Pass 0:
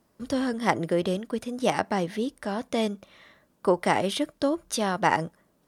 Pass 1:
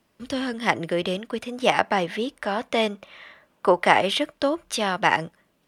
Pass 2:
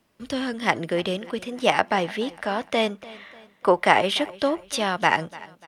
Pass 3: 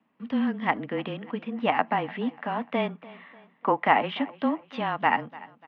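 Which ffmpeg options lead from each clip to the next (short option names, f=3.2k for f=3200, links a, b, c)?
-filter_complex "[0:a]equalizer=f=2.7k:w=1.1:g=10.5,acrossover=split=490|1700[a][b][c];[b]dynaudnorm=f=260:g=9:m=11.5dB[d];[a][d][c]amix=inputs=3:normalize=0,volume=-1.5dB"
-af "aecho=1:1:295|590|885:0.1|0.045|0.0202"
-af "afreqshift=-22,highpass=230,equalizer=f=240:t=q:w=4:g=8,equalizer=f=370:t=q:w=4:g=-10,equalizer=f=560:t=q:w=4:g=-9,equalizer=f=1.5k:t=q:w=4:g=-7,equalizer=f=2.2k:t=q:w=4:g=-4,lowpass=f=2.4k:w=0.5412,lowpass=f=2.4k:w=1.3066"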